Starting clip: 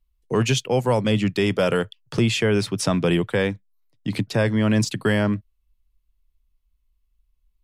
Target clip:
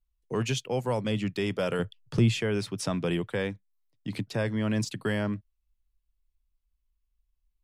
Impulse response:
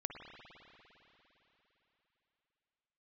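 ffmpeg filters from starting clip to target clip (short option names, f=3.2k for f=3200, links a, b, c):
-filter_complex "[0:a]asettb=1/sr,asplit=3[a][b][c];[a]atrim=end=1.794[d];[b]atrim=start=1.79:end=2.4,asetpts=PTS-STARTPTS,afade=t=in:d=0.004:c=qsin,afade=t=out:st=0.606:d=0.004:c=qsin,lowshelf=f=230:g=10.5[e];[c]atrim=start=2.396[f];[d][e]acrossfade=d=0.004:c1=hsin:c2=qsin[g];[g][f]acrossfade=d=0.004:c1=qsin:c2=hsin,volume=-8.5dB"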